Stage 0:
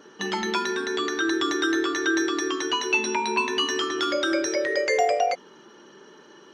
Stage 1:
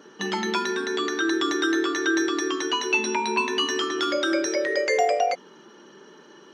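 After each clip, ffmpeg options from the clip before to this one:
-af "lowshelf=f=120:t=q:w=1.5:g=-8"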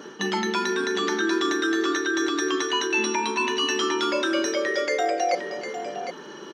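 -af "areverse,acompressor=threshold=-31dB:ratio=6,areverse,aecho=1:1:40|300|755:0.141|0.141|0.376,volume=8.5dB"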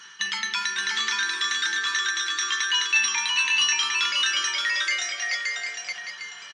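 -af "firequalizer=gain_entry='entry(100,0);entry(190,-13);entry(290,-25);entry(670,-17);entry(960,0);entry(1900,12)':delay=0.05:min_phase=1,aecho=1:1:574:0.708,volume=-8dB" -ar 22050 -c:a aac -b:a 48k

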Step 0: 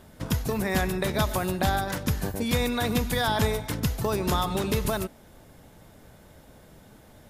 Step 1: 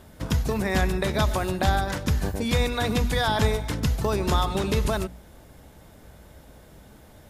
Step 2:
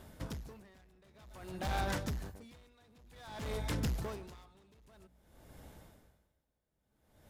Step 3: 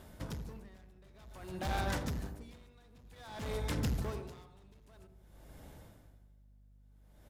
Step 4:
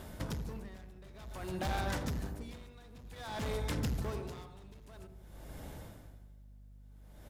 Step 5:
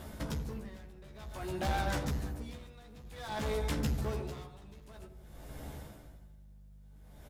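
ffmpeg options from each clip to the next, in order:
-filter_complex "[0:a]equalizer=f=60:t=o:w=0.33:g=14,bandreject=f=60:t=h:w=6,bandreject=f=120:t=h:w=6,bandreject=f=180:t=h:w=6,bandreject=f=240:t=h:w=6,acrossover=split=9300[a][b];[b]acompressor=threshold=-51dB:ratio=4:attack=1:release=60[c];[a][c]amix=inputs=2:normalize=0,volume=1.5dB"
-af "asoftclip=type=hard:threshold=-24.5dB,aeval=exprs='val(0)*pow(10,-32*(0.5-0.5*cos(2*PI*0.53*n/s))/20)':c=same,volume=-5dB"
-filter_complex "[0:a]aeval=exprs='val(0)+0.000631*(sin(2*PI*50*n/s)+sin(2*PI*2*50*n/s)/2+sin(2*PI*3*50*n/s)/3+sin(2*PI*4*50*n/s)/4+sin(2*PI*5*50*n/s)/5)':c=same,asplit=2[a][b];[b]adelay=81,lowpass=f=890:p=1,volume=-6.5dB,asplit=2[c][d];[d]adelay=81,lowpass=f=890:p=1,volume=0.54,asplit=2[e][f];[f]adelay=81,lowpass=f=890:p=1,volume=0.54,asplit=2[g][h];[h]adelay=81,lowpass=f=890:p=1,volume=0.54,asplit=2[i][j];[j]adelay=81,lowpass=f=890:p=1,volume=0.54,asplit=2[k][l];[l]adelay=81,lowpass=f=890:p=1,volume=0.54,asplit=2[m][n];[n]adelay=81,lowpass=f=890:p=1,volume=0.54[o];[a][c][e][g][i][k][m][o]amix=inputs=8:normalize=0"
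-af "acompressor=threshold=-44dB:ratio=2,volume=6.5dB"
-filter_complex "[0:a]asplit=2[a][b];[b]adelay=14,volume=-4dB[c];[a][c]amix=inputs=2:normalize=0"

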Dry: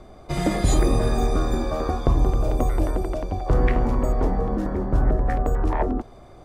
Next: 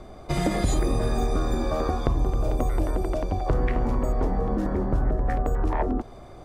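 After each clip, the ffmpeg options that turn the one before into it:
-af "acompressor=threshold=-23dB:ratio=3,volume=2dB"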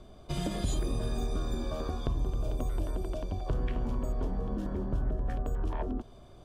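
-af "equalizer=f=315:t=o:w=0.33:g=-4,equalizer=f=500:t=o:w=0.33:g=-5,equalizer=f=800:t=o:w=0.33:g=-8,equalizer=f=1.25k:t=o:w=0.33:g=-5,equalizer=f=2k:t=o:w=0.33:g=-10,equalizer=f=3.15k:t=o:w=0.33:g=7,volume=-7dB"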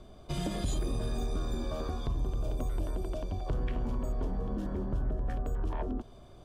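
-af "asoftclip=type=tanh:threshold=-21.5dB"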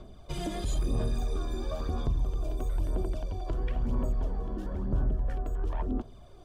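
-af "aphaser=in_gain=1:out_gain=1:delay=3:decay=0.49:speed=1:type=sinusoidal,volume=-1.5dB"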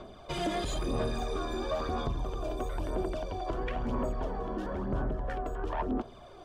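-filter_complex "[0:a]asplit=2[a][b];[b]highpass=f=720:p=1,volume=18dB,asoftclip=type=tanh:threshold=-17.5dB[c];[a][c]amix=inputs=2:normalize=0,lowpass=f=2.2k:p=1,volume=-6dB,volume=-1.5dB"

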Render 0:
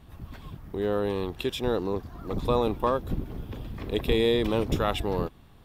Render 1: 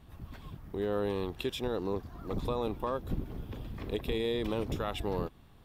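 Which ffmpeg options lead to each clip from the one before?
-af "alimiter=limit=-18dB:level=0:latency=1:release=185,volume=-4dB"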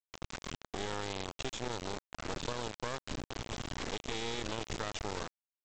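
-filter_complex "[0:a]lowshelf=f=410:g=-8,acrossover=split=82|2200[a][b][c];[a]acompressor=threshold=-54dB:ratio=4[d];[b]acompressor=threshold=-47dB:ratio=4[e];[c]acompressor=threshold=-53dB:ratio=4[f];[d][e][f]amix=inputs=3:normalize=0,aresample=16000,acrusher=bits=5:dc=4:mix=0:aa=0.000001,aresample=44100,volume=11dB"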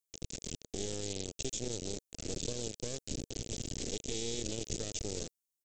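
-af "firequalizer=gain_entry='entry(460,0);entry(990,-23);entry(2600,-6);entry(6500,8)':delay=0.05:min_phase=1,volume=1dB"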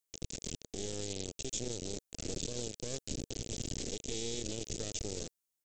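-af "alimiter=level_in=2.5dB:limit=-24dB:level=0:latency=1:release=102,volume=-2.5dB,volume=1.5dB"

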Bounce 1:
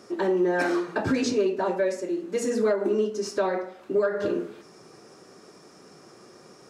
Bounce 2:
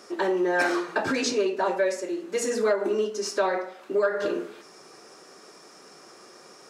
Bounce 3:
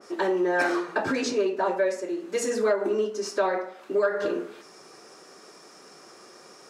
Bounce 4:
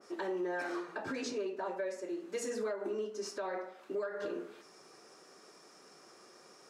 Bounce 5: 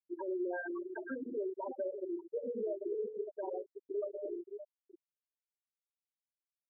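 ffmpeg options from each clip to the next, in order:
-af "highpass=f=660:p=1,volume=4.5dB"
-af "adynamicequalizer=threshold=0.00794:dfrequency=2100:dqfactor=0.7:tfrequency=2100:tqfactor=0.7:attack=5:release=100:ratio=0.375:range=2.5:mode=cutabove:tftype=highshelf"
-af "alimiter=limit=-20dB:level=0:latency=1:release=254,volume=-8.5dB"
-filter_complex "[0:a]asplit=2[a][b];[b]adelay=571.4,volume=-8dB,highshelf=f=4k:g=-12.9[c];[a][c]amix=inputs=2:normalize=0,afftfilt=real='re*gte(hypot(re,im),0.0631)':imag='im*gte(hypot(re,im),0.0631)':win_size=1024:overlap=0.75"

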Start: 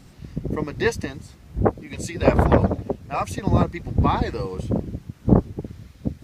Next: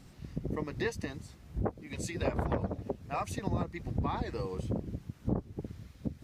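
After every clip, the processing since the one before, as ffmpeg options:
-af "acompressor=threshold=-24dB:ratio=3,volume=-6.5dB"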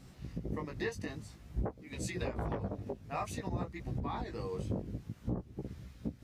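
-af "alimiter=level_in=0.5dB:limit=-24dB:level=0:latency=1:release=407,volume=-0.5dB,flanger=delay=15.5:depth=4.5:speed=0.53,volume=2.5dB"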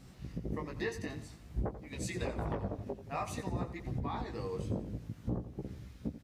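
-af "aecho=1:1:88|176|264|352|440:0.224|0.103|0.0474|0.0218|0.01"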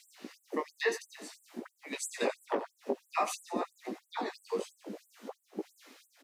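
-af "afftfilt=real='re*gte(b*sr/1024,200*pow(7600/200,0.5+0.5*sin(2*PI*3*pts/sr)))':imag='im*gte(b*sr/1024,200*pow(7600/200,0.5+0.5*sin(2*PI*3*pts/sr)))':win_size=1024:overlap=0.75,volume=8dB"

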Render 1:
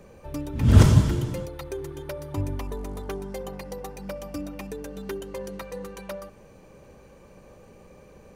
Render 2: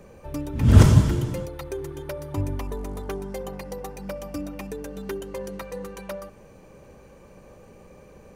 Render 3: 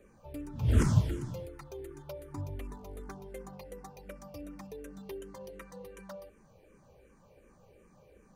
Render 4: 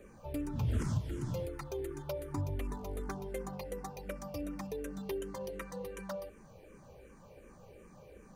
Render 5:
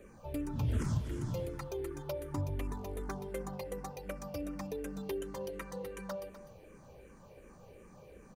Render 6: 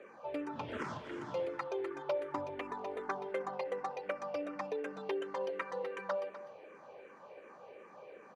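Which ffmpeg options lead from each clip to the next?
-af "equalizer=f=3.9k:w=1.5:g=-2,volume=1.5dB"
-filter_complex "[0:a]asplit=2[a][b];[b]afreqshift=-2.7[c];[a][c]amix=inputs=2:normalize=1,volume=-8.5dB"
-af "acompressor=threshold=-36dB:ratio=5,volume=5dB"
-af "aecho=1:1:250:0.211"
-af "highpass=530,lowpass=2.5k,volume=7.5dB"

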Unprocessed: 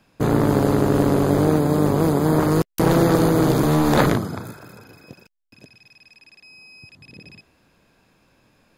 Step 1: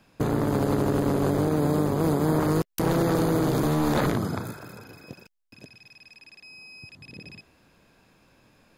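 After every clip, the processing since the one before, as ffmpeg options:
-af "alimiter=limit=-14.5dB:level=0:latency=1:release=97"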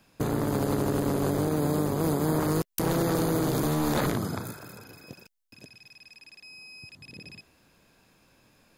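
-af "highshelf=f=4.9k:g=7.5,volume=-3dB"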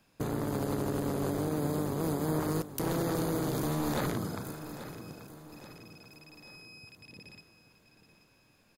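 -af "aecho=1:1:833|1666|2499|3332|4165:0.224|0.103|0.0474|0.0218|0.01,volume=-5.5dB"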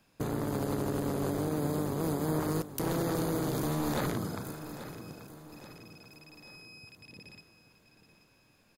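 -af anull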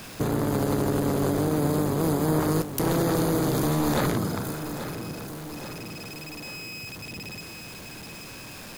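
-af "aeval=exprs='val(0)+0.5*0.0075*sgn(val(0))':c=same,volume=6.5dB"

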